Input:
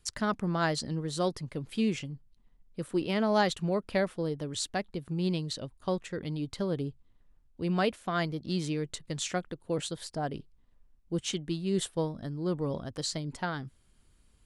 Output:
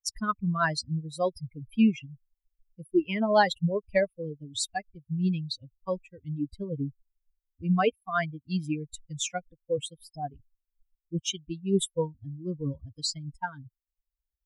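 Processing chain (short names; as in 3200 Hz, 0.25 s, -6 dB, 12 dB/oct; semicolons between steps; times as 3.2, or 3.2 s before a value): per-bin expansion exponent 3; gain +9 dB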